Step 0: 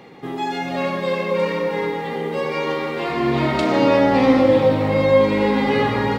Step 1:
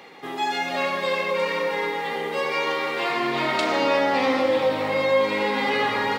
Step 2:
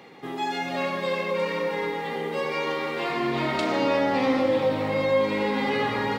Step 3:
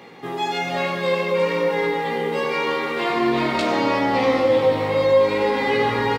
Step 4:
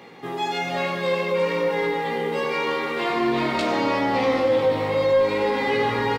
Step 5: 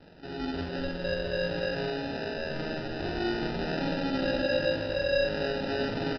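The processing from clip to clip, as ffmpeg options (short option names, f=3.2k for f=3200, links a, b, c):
-filter_complex "[0:a]asplit=2[a][b];[b]alimiter=limit=-14dB:level=0:latency=1:release=206,volume=0.5dB[c];[a][c]amix=inputs=2:normalize=0,highpass=f=1k:p=1,volume=-2.5dB"
-af "lowshelf=f=310:g=12,volume=-5dB"
-filter_complex "[0:a]asplit=2[a][b];[b]adelay=17,volume=-5dB[c];[a][c]amix=inputs=2:normalize=0,volume=3.5dB"
-af "asoftclip=type=tanh:threshold=-9dB,volume=-1.5dB"
-filter_complex "[0:a]aresample=11025,acrusher=samples=10:mix=1:aa=0.000001,aresample=44100,asplit=2[a][b];[b]adelay=46,volume=-6dB[c];[a][c]amix=inputs=2:normalize=0,volume=-9dB"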